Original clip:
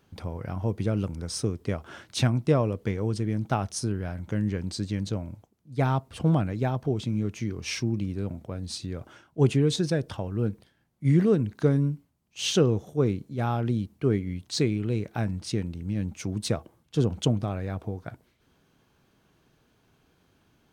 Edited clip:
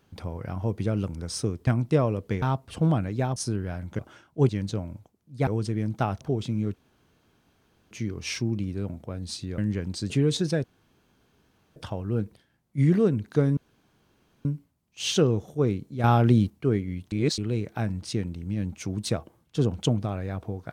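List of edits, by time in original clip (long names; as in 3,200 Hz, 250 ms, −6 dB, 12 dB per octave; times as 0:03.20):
0:01.67–0:02.23: remove
0:02.98–0:03.72: swap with 0:05.85–0:06.79
0:04.35–0:04.87: swap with 0:08.99–0:09.49
0:07.32: splice in room tone 1.17 s
0:10.03: splice in room tone 1.12 s
0:11.84: splice in room tone 0.88 s
0:13.43–0:13.89: clip gain +7.5 dB
0:14.51–0:14.77: reverse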